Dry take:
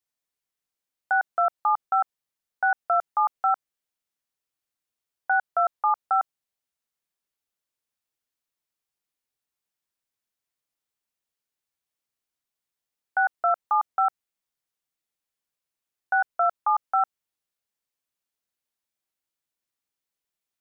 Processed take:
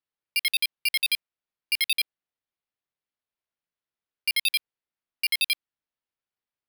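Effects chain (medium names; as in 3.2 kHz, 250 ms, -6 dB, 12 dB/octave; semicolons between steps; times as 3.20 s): dynamic bell 890 Hz, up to +4 dB, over -35 dBFS, Q 0.88; wide varispeed 3.08×; sample-and-hold 6×; trim -4.5 dB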